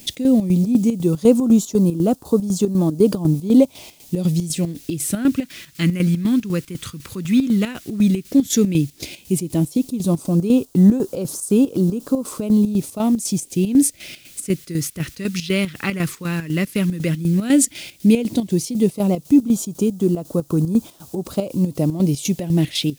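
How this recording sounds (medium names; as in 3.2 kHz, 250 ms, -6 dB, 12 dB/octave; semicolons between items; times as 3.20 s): a quantiser's noise floor 8-bit, dither triangular; phasing stages 2, 0.11 Hz, lowest notch 690–2000 Hz; chopped level 4 Hz, depth 65%, duty 60%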